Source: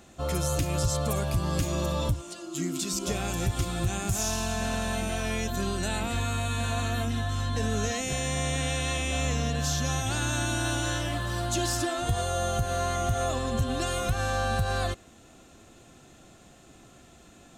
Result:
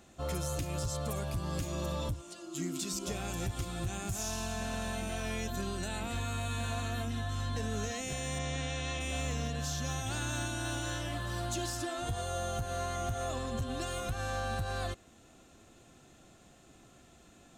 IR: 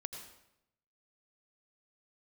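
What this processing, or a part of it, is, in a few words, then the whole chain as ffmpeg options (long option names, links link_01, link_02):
limiter into clipper: -filter_complex "[0:a]alimiter=limit=-19.5dB:level=0:latency=1:release=455,asoftclip=type=hard:threshold=-22.5dB,asplit=3[link_01][link_02][link_03];[link_01]afade=type=out:start_time=8.38:duration=0.02[link_04];[link_02]lowpass=frequency=7100:width=0.5412,lowpass=frequency=7100:width=1.3066,afade=type=in:start_time=8.38:duration=0.02,afade=type=out:start_time=8.99:duration=0.02[link_05];[link_03]afade=type=in:start_time=8.99:duration=0.02[link_06];[link_04][link_05][link_06]amix=inputs=3:normalize=0,volume=-5.5dB"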